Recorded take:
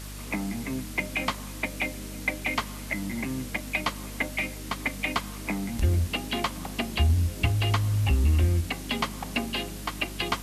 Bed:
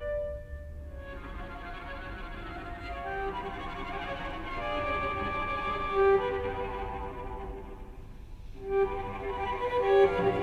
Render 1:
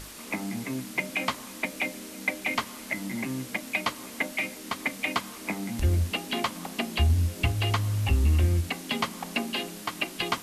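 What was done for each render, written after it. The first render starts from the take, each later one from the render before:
mains-hum notches 50/100/150/200/250/300 Hz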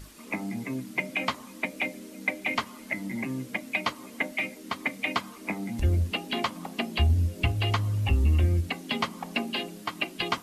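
broadband denoise 9 dB, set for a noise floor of −42 dBFS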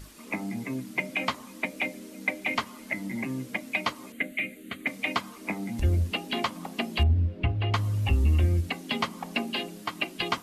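0:04.12–0:04.87: phaser with its sweep stopped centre 2,300 Hz, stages 4
0:07.03–0:07.74: high-frequency loss of the air 380 metres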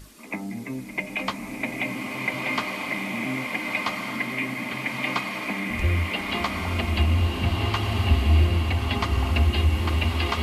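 echo ahead of the sound 92 ms −16 dB
slow-attack reverb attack 1,510 ms, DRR −2 dB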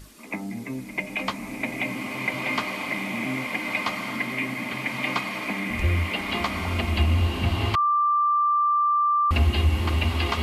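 0:07.75–0:09.31: beep over 1,180 Hz −18 dBFS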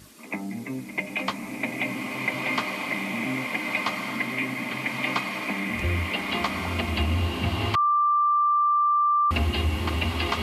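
high-pass filter 94 Hz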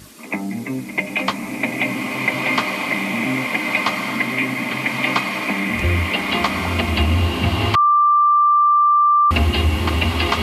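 level +7.5 dB

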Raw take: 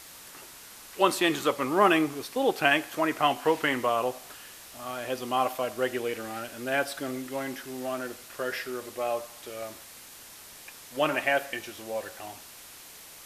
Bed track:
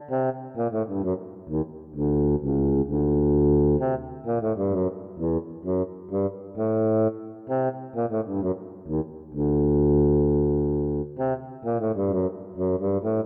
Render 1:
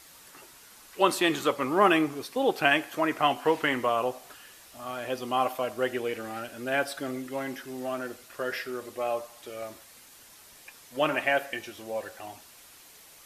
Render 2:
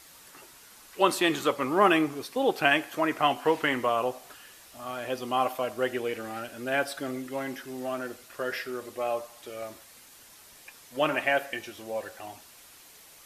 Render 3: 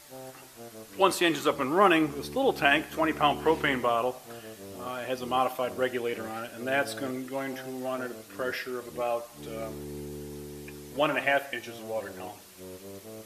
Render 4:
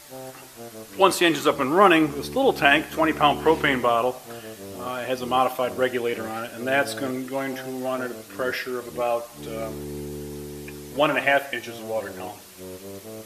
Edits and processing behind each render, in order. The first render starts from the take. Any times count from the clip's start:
broadband denoise 6 dB, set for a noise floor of −48 dBFS
no processing that can be heard
mix in bed track −20 dB
level +5.5 dB

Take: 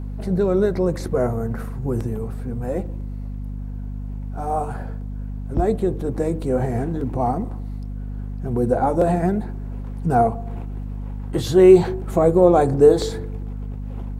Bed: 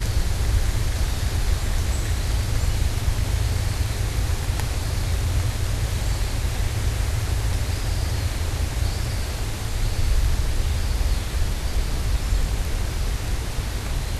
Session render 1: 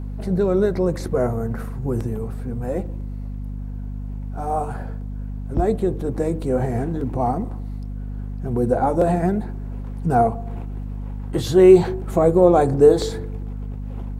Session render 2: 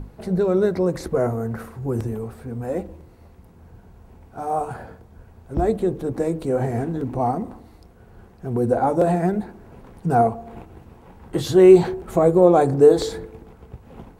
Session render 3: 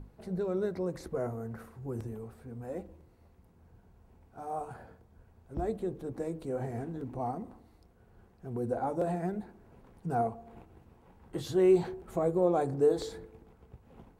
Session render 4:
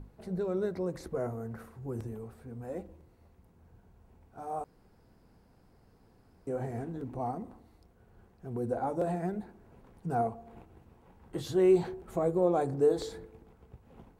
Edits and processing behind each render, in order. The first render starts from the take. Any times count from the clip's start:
no processing that can be heard
mains-hum notches 50/100/150/200/250 Hz
level −13 dB
0:04.64–0:06.47: fill with room tone

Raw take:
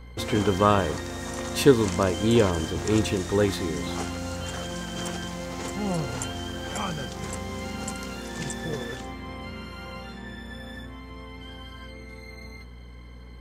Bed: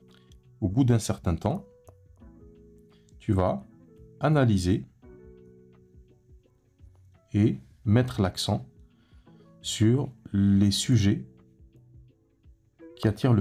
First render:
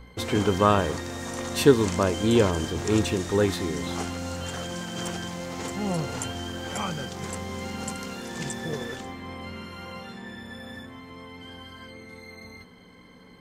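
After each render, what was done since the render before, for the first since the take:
hum removal 60 Hz, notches 2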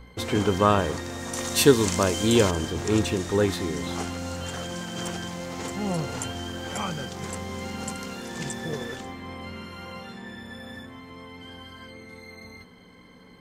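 0:01.33–0:02.51: high-shelf EQ 3,300 Hz +9 dB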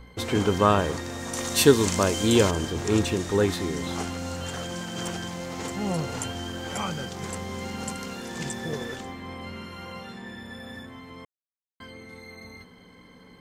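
0:11.25–0:11.80: silence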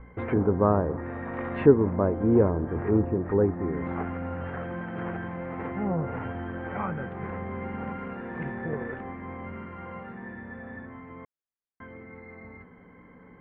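Butterworth low-pass 2,100 Hz 36 dB per octave
treble cut that deepens with the level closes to 820 Hz, closed at −22 dBFS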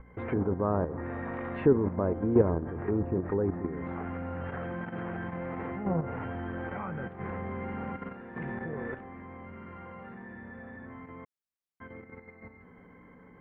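output level in coarse steps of 9 dB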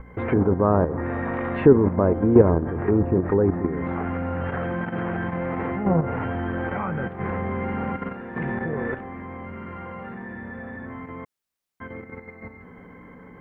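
level +9 dB
brickwall limiter −3 dBFS, peak gain reduction 1 dB

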